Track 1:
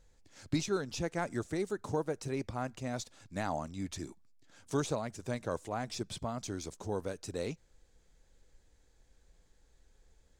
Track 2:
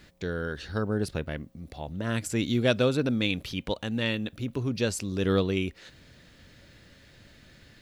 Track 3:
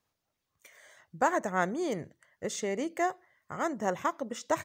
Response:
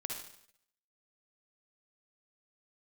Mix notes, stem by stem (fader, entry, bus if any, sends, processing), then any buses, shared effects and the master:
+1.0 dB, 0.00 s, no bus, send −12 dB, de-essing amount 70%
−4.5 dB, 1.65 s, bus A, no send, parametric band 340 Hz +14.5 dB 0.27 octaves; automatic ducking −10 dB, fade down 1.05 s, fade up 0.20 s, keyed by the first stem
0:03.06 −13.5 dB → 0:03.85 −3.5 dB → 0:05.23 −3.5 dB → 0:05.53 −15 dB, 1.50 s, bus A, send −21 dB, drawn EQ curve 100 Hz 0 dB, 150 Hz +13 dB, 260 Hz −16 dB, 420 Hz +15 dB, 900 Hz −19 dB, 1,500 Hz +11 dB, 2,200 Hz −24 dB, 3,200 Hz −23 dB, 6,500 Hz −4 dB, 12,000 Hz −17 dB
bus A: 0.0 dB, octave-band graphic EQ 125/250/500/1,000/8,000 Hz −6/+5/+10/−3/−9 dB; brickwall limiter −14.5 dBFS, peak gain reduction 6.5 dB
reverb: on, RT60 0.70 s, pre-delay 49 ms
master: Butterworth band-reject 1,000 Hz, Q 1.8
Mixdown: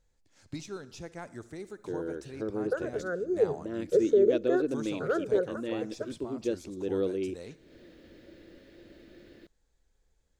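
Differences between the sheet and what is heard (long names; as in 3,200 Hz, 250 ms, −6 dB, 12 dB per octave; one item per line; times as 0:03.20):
stem 1 +1.0 dB → −9.0 dB
master: missing Butterworth band-reject 1,000 Hz, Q 1.8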